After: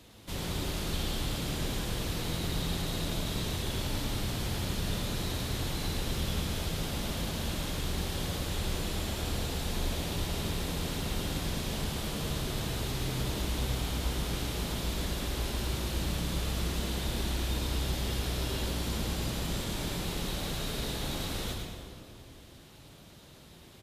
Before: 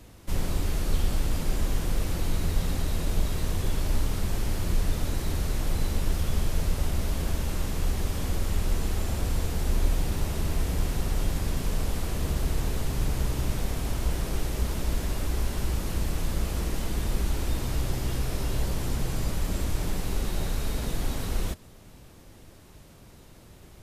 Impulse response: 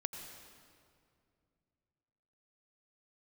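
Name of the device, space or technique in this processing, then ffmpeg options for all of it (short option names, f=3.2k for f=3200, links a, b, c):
PA in a hall: -filter_complex "[0:a]highpass=f=110:p=1,equalizer=f=3.6k:t=o:w=0.77:g=8,aecho=1:1:108:0.473[a];[1:a]atrim=start_sample=2205[b];[a][b]afir=irnorm=-1:irlink=0,volume=-2dB"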